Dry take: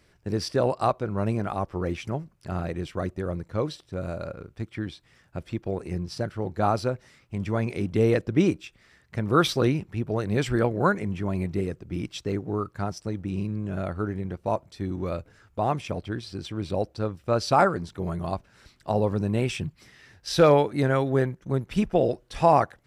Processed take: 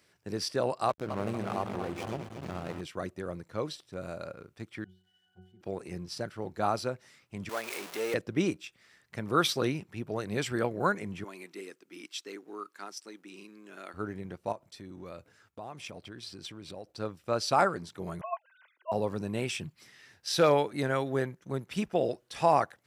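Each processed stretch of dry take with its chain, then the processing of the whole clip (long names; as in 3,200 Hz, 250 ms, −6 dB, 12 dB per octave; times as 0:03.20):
0:00.89–0:02.81: feedback delay that plays each chunk backwards 117 ms, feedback 75%, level −7 dB + slack as between gear wheels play −29.5 dBFS + background raised ahead of every attack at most 37 dB per second
0:04.84–0:05.61: spike at every zero crossing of −26.5 dBFS + high-pass filter 57 Hz + resonances in every octave F#, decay 0.44 s
0:07.49–0:08.14: converter with a step at zero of −29 dBFS + high-pass filter 550 Hz
0:11.24–0:13.94: high-pass filter 310 Hz 24 dB per octave + parametric band 600 Hz −11 dB 1.3 octaves
0:14.52–0:16.94: downward compressor 4 to 1, threshold −34 dBFS + downward expander −55 dBFS
0:18.21–0:18.92: three sine waves on the formant tracks + comb filter 2 ms, depth 36%
whole clip: high-pass filter 100 Hz; spectral tilt +1.5 dB per octave; level −4.5 dB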